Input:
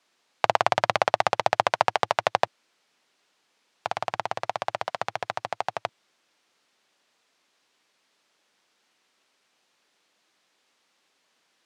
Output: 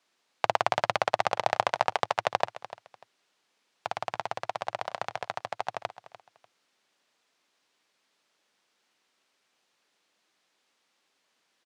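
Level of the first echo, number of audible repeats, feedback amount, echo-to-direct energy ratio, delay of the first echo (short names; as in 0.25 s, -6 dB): -15.5 dB, 2, 24%, -15.5 dB, 0.296 s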